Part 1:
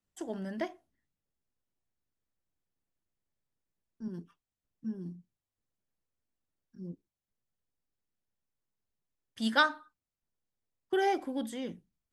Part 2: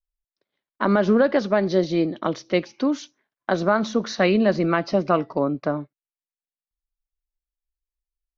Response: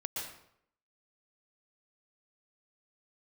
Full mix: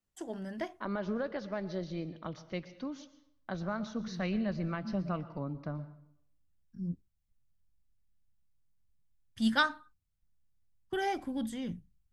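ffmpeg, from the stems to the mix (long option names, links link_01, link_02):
-filter_complex "[0:a]volume=-1.5dB[link_01];[1:a]volume=-17.5dB,asplit=3[link_02][link_03][link_04];[link_03]volume=-13dB[link_05];[link_04]apad=whole_len=534751[link_06];[link_01][link_06]sidechaincompress=threshold=-38dB:ratio=8:attack=16:release=1260[link_07];[2:a]atrim=start_sample=2205[link_08];[link_05][link_08]afir=irnorm=-1:irlink=0[link_09];[link_07][link_02][link_09]amix=inputs=3:normalize=0,asubboost=boost=9:cutoff=130"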